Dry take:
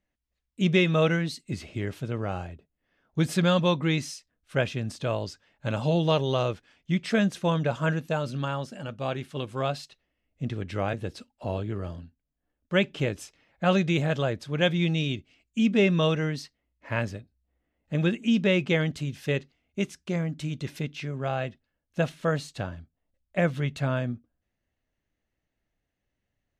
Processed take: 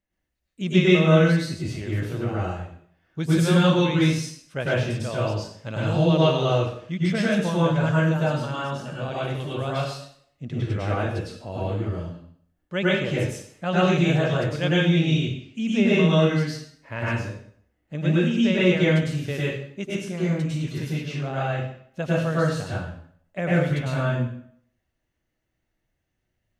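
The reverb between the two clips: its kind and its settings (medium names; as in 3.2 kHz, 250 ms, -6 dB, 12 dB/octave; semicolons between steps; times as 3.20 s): plate-style reverb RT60 0.61 s, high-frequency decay 0.9×, pre-delay 90 ms, DRR -7.5 dB; trim -4.5 dB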